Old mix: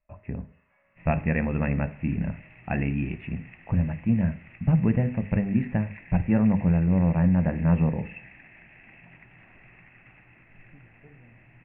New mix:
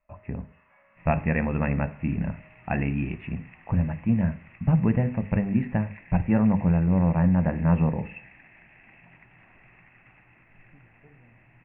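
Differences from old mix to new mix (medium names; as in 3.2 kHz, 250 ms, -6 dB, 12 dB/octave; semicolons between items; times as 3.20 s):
first sound +5.0 dB; second sound -3.0 dB; master: add peaking EQ 1 kHz +4.5 dB 1 oct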